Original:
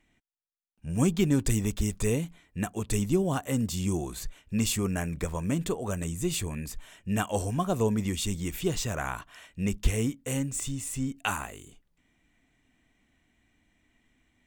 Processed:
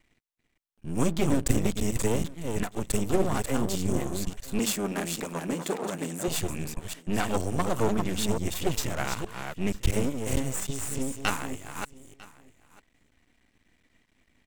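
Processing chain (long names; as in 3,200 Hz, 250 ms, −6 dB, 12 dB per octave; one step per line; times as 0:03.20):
delay that plays each chunk backwards 289 ms, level −5.5 dB
half-wave rectification
0:04.59–0:06.28: high-pass filter 170 Hz 24 dB per octave
single-tap delay 949 ms −21.5 dB
level +4.5 dB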